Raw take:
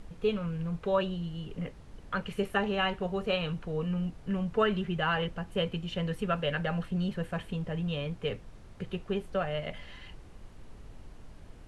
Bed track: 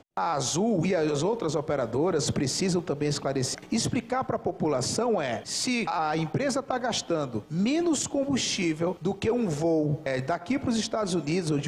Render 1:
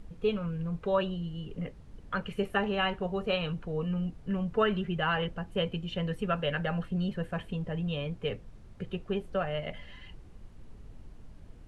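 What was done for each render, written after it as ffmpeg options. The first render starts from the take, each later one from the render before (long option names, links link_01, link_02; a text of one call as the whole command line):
ffmpeg -i in.wav -af "afftdn=noise_reduction=6:noise_floor=-50" out.wav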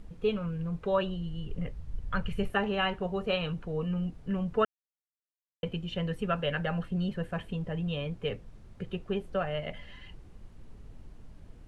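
ffmpeg -i in.wav -filter_complex "[0:a]asettb=1/sr,asplit=3[link_01][link_02][link_03];[link_01]atrim=end=0.914[link_04];[link_02]atrim=start=0.91:end=2.5,asetpts=PTS-STARTPTS,afade=type=in:duration=0.004:curve=qsin,afade=type=out:start_time=1.586:duration=0.004:curve=qsin,asubboost=boost=11.5:cutoff=120[link_05];[link_03]atrim=start=2.496[link_06];[link_04][link_05]acrossfade=duration=0.004:curve1=hsin:curve2=qsin[link_07];[link_07][link_06]acrossfade=duration=0.004:curve1=qsin:curve2=hsin,asplit=3[link_08][link_09][link_10];[link_08]atrim=end=4.65,asetpts=PTS-STARTPTS,afade=type=out:start_time=4.646:duration=0.004:curve=hsin[link_11];[link_09]atrim=start=4.65:end=5.63,asetpts=PTS-STARTPTS,volume=0[link_12];[link_10]atrim=start=5.63,asetpts=PTS-STARTPTS,afade=type=in:duration=0.004:curve=hsin[link_13];[link_11][link_12][link_13]concat=n=3:v=0:a=1" out.wav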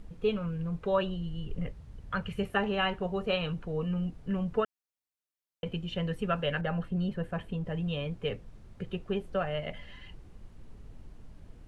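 ffmpeg -i in.wav -filter_complex "[0:a]asettb=1/sr,asplit=3[link_01][link_02][link_03];[link_01]atrim=end=1.724[link_04];[link_02]atrim=start=1.72:end=2.54,asetpts=PTS-STARTPTS,afade=type=in:duration=0.004:curve=qsin,afade=type=out:start_time=0.816:duration=0.004:curve=qsin,highpass=frequency=100:poles=1[link_05];[link_03]atrim=start=2.536[link_06];[link_04][link_05]acrossfade=duration=0.004:curve1=hsin:curve2=qsin[link_07];[link_07][link_06]acrossfade=duration=0.004:curve1=qsin:curve2=hsin,asettb=1/sr,asplit=3[link_08][link_09][link_10];[link_08]atrim=end=4.604[link_11];[link_09]atrim=start=4.6:end=5.66,asetpts=PTS-STARTPTS,afade=type=in:duration=0.004:curve=qsin,afade=type=out:start_time=1.056:duration=0.004:curve=qsin,acompressor=threshold=-33dB:ratio=1.5:attack=3.2:release=140:knee=1:detection=peak[link_12];[link_10]atrim=start=5.656[link_13];[link_11][link_12]acrossfade=duration=0.004:curve1=hsin:curve2=qsin[link_14];[link_14][link_13]acrossfade=duration=0.004:curve1=qsin:curve2=hsin,asettb=1/sr,asplit=3[link_15][link_16][link_17];[link_15]atrim=end=6.614[link_18];[link_16]atrim=start=6.61:end=7.66,asetpts=PTS-STARTPTS,afade=type=in:duration=0.004:curve=qsin,afade=type=out:start_time=1.046:duration=0.004:curve=qsin,adynamicequalizer=threshold=0.00316:dfrequency=1700:dqfactor=0.7:tfrequency=1700:tqfactor=0.7:attack=5:release=100:ratio=0.375:range=2:mode=cutabove:tftype=highshelf[link_19];[link_17]atrim=start=7.656[link_20];[link_18][link_19]acrossfade=duration=0.004:curve1=hsin:curve2=qsin[link_21];[link_21][link_20]acrossfade=duration=0.004:curve1=qsin:curve2=hsin" out.wav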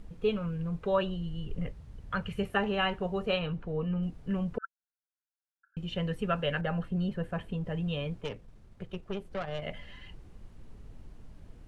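ffmpeg -i in.wav -filter_complex "[0:a]asettb=1/sr,asplit=3[link_01][link_02][link_03];[link_01]atrim=end=3.394[link_04];[link_02]atrim=start=3.39:end=4.03,asetpts=PTS-STARTPTS,afade=type=in:duration=0.004:curve=qsin,afade=type=out:start_time=0.636:duration=0.004:curve=qsin,lowpass=frequency=2600:poles=1[link_05];[link_03]atrim=start=4.026[link_06];[link_04][link_05]acrossfade=duration=0.004:curve1=hsin:curve2=qsin[link_07];[link_07][link_06]acrossfade=duration=0.004:curve1=qsin:curve2=hsin,asettb=1/sr,asplit=3[link_08][link_09][link_10];[link_08]atrim=end=4.584[link_11];[link_09]atrim=start=4.58:end=5.77,asetpts=PTS-STARTPTS,afade=type=in:duration=0.004:curve=qsin,afade=type=out:start_time=1.186:duration=0.004:curve=qsin,asuperpass=centerf=1500:order=12:qfactor=4.7[link_12];[link_10]atrim=start=5.766[link_13];[link_11][link_12]acrossfade=duration=0.004:curve1=hsin:curve2=qsin[link_14];[link_14][link_13]acrossfade=duration=0.004:curve1=qsin:curve2=hsin,asettb=1/sr,asplit=3[link_15][link_16][link_17];[link_15]atrim=end=8.214[link_18];[link_16]atrim=start=8.21:end=9.62,asetpts=PTS-STARTPTS,afade=type=in:duration=0.004:curve=qsin,afade=type=out:start_time=1.406:duration=0.004:curve=qsin,aeval=exprs='(tanh(28.2*val(0)+0.75)-tanh(0.75))/28.2':channel_layout=same[link_19];[link_17]atrim=start=9.616[link_20];[link_18][link_19]acrossfade=duration=0.004:curve1=hsin:curve2=qsin[link_21];[link_21][link_20]acrossfade=duration=0.004:curve1=qsin:curve2=hsin" out.wav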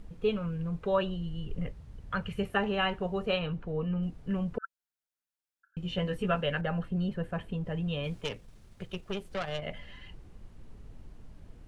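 ffmpeg -i in.wav -filter_complex "[0:a]asettb=1/sr,asplit=3[link_01][link_02][link_03];[link_01]atrim=end=5.834[link_04];[link_02]atrim=start=5.83:end=6.41,asetpts=PTS-STARTPTS,afade=type=in:duration=0.004:curve=qsin,afade=type=out:start_time=0.576:duration=0.004:curve=qsin,asplit=2[link_05][link_06];[link_06]adelay=16,volume=-3.5dB[link_07];[link_05][link_07]amix=inputs=2:normalize=0,atrim=end_sample=25578[link_08];[link_03]atrim=start=6.406[link_09];[link_04][link_08]acrossfade=duration=0.004:curve1=hsin:curve2=qsin[link_10];[link_10][link_09]acrossfade=duration=0.004:curve1=qsin:curve2=hsin,asplit=3[link_11][link_12][link_13];[link_11]afade=type=out:start_time=8.03:duration=0.02[link_14];[link_12]highshelf=frequency=2400:gain=10.5,afade=type=in:start_time=8.03:duration=0.02,afade=type=out:start_time=9.56:duration=0.02[link_15];[link_13]afade=type=in:start_time=9.56:duration=0.02[link_16];[link_14][link_15][link_16]amix=inputs=3:normalize=0" out.wav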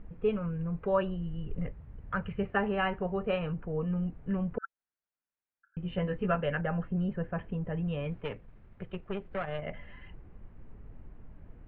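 ffmpeg -i in.wav -af "lowpass=frequency=2300:width=0.5412,lowpass=frequency=2300:width=1.3066" out.wav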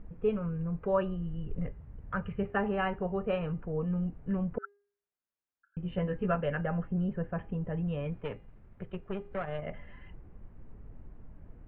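ffmpeg -i in.wav -af "highshelf=frequency=2600:gain=-8.5,bandreject=frequency=405.5:width_type=h:width=4,bandreject=frequency=811:width_type=h:width=4,bandreject=frequency=1216.5:width_type=h:width=4,bandreject=frequency=1622:width_type=h:width=4,bandreject=frequency=2027.5:width_type=h:width=4,bandreject=frequency=2433:width_type=h:width=4,bandreject=frequency=2838.5:width_type=h:width=4,bandreject=frequency=3244:width_type=h:width=4,bandreject=frequency=3649.5:width_type=h:width=4,bandreject=frequency=4055:width_type=h:width=4,bandreject=frequency=4460.5:width_type=h:width=4,bandreject=frequency=4866:width_type=h:width=4,bandreject=frequency=5271.5:width_type=h:width=4,bandreject=frequency=5677:width_type=h:width=4,bandreject=frequency=6082.5:width_type=h:width=4,bandreject=frequency=6488:width_type=h:width=4,bandreject=frequency=6893.5:width_type=h:width=4,bandreject=frequency=7299:width_type=h:width=4,bandreject=frequency=7704.5:width_type=h:width=4,bandreject=frequency=8110:width_type=h:width=4,bandreject=frequency=8515.5:width_type=h:width=4,bandreject=frequency=8921:width_type=h:width=4,bandreject=frequency=9326.5:width_type=h:width=4,bandreject=frequency=9732:width_type=h:width=4,bandreject=frequency=10137.5:width_type=h:width=4,bandreject=frequency=10543:width_type=h:width=4,bandreject=frequency=10948.5:width_type=h:width=4,bandreject=frequency=11354:width_type=h:width=4,bandreject=frequency=11759.5:width_type=h:width=4,bandreject=frequency=12165:width_type=h:width=4,bandreject=frequency=12570.5:width_type=h:width=4,bandreject=frequency=12976:width_type=h:width=4,bandreject=frequency=13381.5:width_type=h:width=4" out.wav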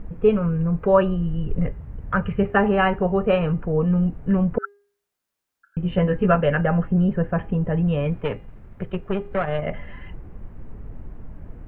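ffmpeg -i in.wav -af "volume=12dB" out.wav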